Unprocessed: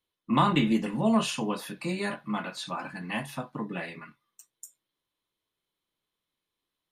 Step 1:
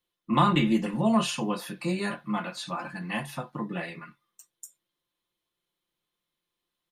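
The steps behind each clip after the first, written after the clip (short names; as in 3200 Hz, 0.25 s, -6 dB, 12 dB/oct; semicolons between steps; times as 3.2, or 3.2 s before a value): comb 5.7 ms, depth 45%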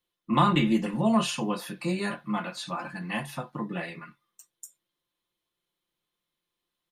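nothing audible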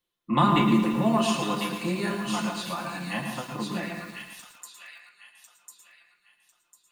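thin delay 1.049 s, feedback 31%, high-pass 2500 Hz, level -3 dB; on a send at -5.5 dB: reverb RT60 0.45 s, pre-delay 0.101 s; on the sum: lo-fi delay 0.113 s, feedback 80%, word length 7-bit, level -12 dB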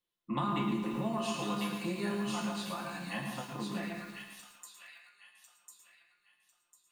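compressor 4:1, threshold -24 dBFS, peak gain reduction 7.5 dB; resonator 68 Hz, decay 0.45 s, harmonics all, mix 70%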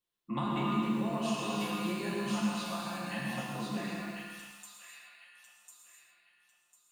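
non-linear reverb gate 0.32 s flat, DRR -1 dB; gain -2 dB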